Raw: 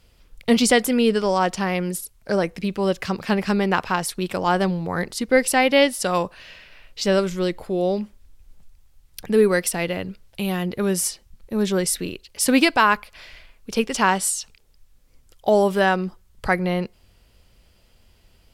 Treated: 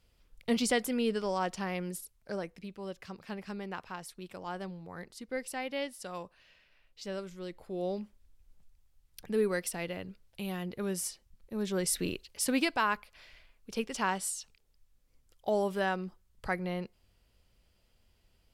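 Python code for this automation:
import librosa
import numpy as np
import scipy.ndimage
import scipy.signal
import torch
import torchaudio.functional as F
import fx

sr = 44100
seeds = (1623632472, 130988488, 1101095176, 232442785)

y = fx.gain(x, sr, db=fx.line((2.01, -12.0), (2.73, -19.5), (7.4, -19.5), (7.84, -12.5), (11.67, -12.5), (12.12, -3.5), (12.53, -12.5)))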